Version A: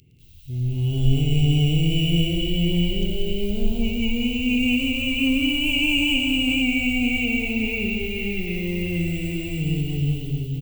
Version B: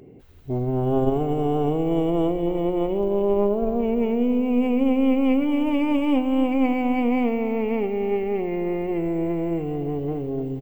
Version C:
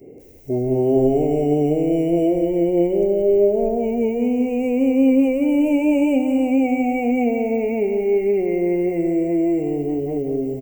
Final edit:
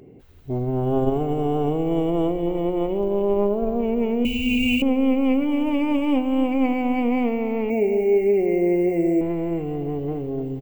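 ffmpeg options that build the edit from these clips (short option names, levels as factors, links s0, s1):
-filter_complex "[1:a]asplit=3[s0][s1][s2];[s0]atrim=end=4.252[s3];[0:a]atrim=start=4.248:end=4.822[s4];[s1]atrim=start=4.818:end=7.702[s5];[2:a]atrim=start=7.698:end=9.212[s6];[s2]atrim=start=9.208[s7];[s3][s4]acrossfade=d=0.004:c1=hsin:c2=hsin[s8];[s8][s5]acrossfade=d=0.004:c1=hsin:c2=hsin[s9];[s9][s6]acrossfade=d=0.004:c1=hsin:c2=hsin[s10];[s10][s7]acrossfade=d=0.004:c1=hsin:c2=hsin"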